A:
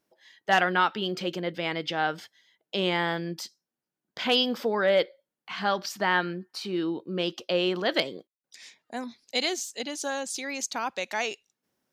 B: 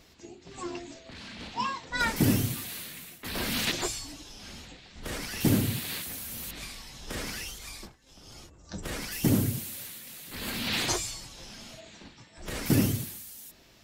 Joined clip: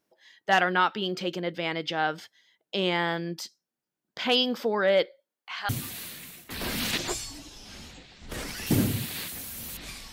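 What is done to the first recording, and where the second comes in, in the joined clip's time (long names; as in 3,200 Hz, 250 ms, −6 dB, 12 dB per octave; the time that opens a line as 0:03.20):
A
0:05.20–0:05.69: high-pass filter 200 Hz → 1,100 Hz
0:05.69: continue with B from 0:02.43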